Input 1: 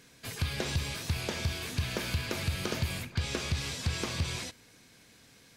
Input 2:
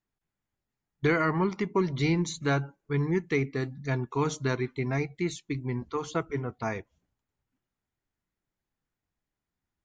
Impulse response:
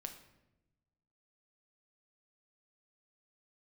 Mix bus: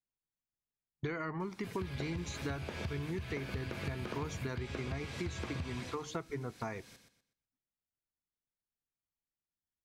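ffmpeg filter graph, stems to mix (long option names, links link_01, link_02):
-filter_complex "[0:a]acrossover=split=2800[link_01][link_02];[link_02]acompressor=threshold=-51dB:ratio=4:attack=1:release=60[link_03];[link_01][link_03]amix=inputs=2:normalize=0,adelay=1400,volume=2dB,asplit=2[link_04][link_05];[link_05]volume=-8dB[link_06];[1:a]agate=range=-15dB:threshold=-47dB:ratio=16:detection=peak,volume=-0.5dB[link_07];[link_06]aecho=0:1:123|246|369|492:1|0.28|0.0784|0.022[link_08];[link_04][link_07][link_08]amix=inputs=3:normalize=0,acompressor=threshold=-36dB:ratio=6"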